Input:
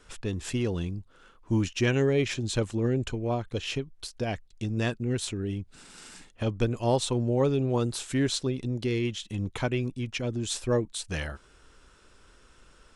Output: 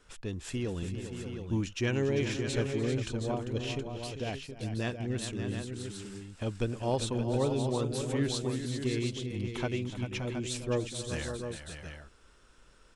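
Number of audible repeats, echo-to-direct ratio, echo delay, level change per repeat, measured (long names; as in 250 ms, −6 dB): 4, −3.5 dB, 296 ms, repeats not evenly spaced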